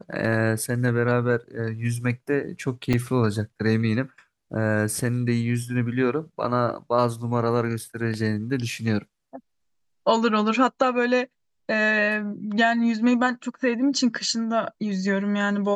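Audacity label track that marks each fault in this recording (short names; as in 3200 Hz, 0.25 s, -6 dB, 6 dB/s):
2.930000	2.940000	gap 5.9 ms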